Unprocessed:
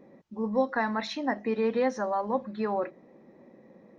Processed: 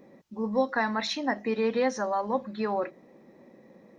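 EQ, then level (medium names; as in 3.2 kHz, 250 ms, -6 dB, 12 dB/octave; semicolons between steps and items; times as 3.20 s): treble shelf 3.1 kHz +9 dB; 0.0 dB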